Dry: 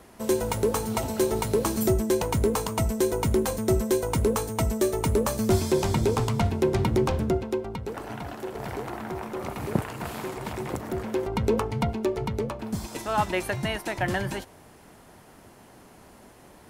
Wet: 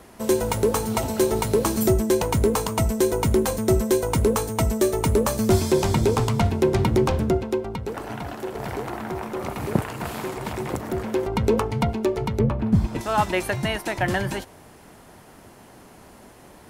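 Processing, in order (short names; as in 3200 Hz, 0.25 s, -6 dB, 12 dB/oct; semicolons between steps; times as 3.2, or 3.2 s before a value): 12.39–13.01 tone controls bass +12 dB, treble -14 dB; gain +3.5 dB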